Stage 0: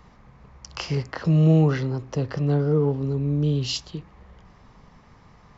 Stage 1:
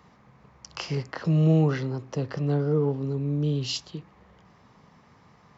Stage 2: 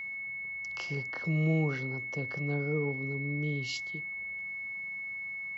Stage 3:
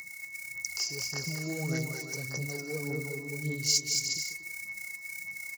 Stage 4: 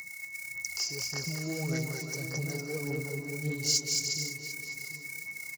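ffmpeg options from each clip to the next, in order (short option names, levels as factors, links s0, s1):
-af "highpass=110,volume=0.75"
-af "aeval=exprs='val(0)+0.0398*sin(2*PI*2200*n/s)':c=same,volume=0.398"
-af "aecho=1:1:220|363|456|516.4|555.6:0.631|0.398|0.251|0.158|0.1,aphaser=in_gain=1:out_gain=1:delay=3:decay=0.52:speed=1.7:type=sinusoidal,aexciter=amount=12.8:drive=9.3:freq=5000,volume=0.422"
-filter_complex "[0:a]asplit=2[s0][s1];[s1]asoftclip=type=tanh:threshold=0.0376,volume=0.562[s2];[s0][s2]amix=inputs=2:normalize=0,asplit=2[s3][s4];[s4]adelay=747,lowpass=f=2300:p=1,volume=0.355,asplit=2[s5][s6];[s6]adelay=747,lowpass=f=2300:p=1,volume=0.26,asplit=2[s7][s8];[s8]adelay=747,lowpass=f=2300:p=1,volume=0.26[s9];[s3][s5][s7][s9]amix=inputs=4:normalize=0,volume=0.708"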